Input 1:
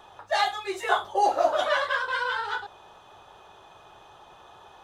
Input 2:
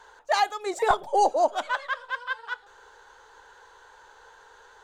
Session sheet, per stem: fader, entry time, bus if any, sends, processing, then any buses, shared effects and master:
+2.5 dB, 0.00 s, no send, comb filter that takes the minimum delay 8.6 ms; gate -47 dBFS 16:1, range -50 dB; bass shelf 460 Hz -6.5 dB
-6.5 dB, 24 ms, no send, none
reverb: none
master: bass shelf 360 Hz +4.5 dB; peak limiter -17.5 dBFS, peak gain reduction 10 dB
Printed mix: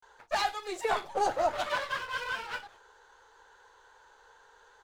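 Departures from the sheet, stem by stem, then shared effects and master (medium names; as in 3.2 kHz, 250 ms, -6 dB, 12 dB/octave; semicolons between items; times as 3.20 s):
stem 1 +2.5 dB -> -7.0 dB; master: missing bass shelf 360 Hz +4.5 dB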